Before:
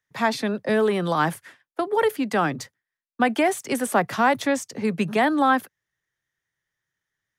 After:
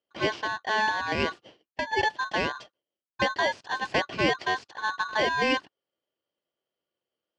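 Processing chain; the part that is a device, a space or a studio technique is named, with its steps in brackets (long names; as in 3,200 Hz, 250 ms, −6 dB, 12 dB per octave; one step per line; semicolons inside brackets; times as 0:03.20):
ring modulator pedal into a guitar cabinet (ring modulator with a square carrier 1,300 Hz; loudspeaker in its box 84–4,300 Hz, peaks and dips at 340 Hz +5 dB, 1,300 Hz −5 dB, 2,200 Hz −7 dB, 3,700 Hz −7 dB)
level −3 dB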